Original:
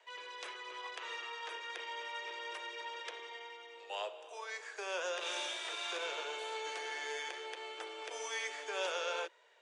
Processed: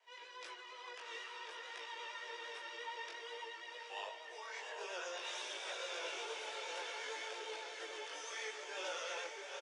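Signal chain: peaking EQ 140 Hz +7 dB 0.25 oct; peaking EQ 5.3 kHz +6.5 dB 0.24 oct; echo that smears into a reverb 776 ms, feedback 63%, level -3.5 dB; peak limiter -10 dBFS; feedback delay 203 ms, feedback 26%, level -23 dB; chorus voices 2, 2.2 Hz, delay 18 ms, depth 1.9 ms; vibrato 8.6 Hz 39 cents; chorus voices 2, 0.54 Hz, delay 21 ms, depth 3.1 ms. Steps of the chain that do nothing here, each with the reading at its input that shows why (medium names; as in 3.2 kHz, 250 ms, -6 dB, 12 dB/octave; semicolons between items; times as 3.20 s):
peaking EQ 140 Hz: input has nothing below 290 Hz; peak limiter -10 dBFS: peak at its input -24.5 dBFS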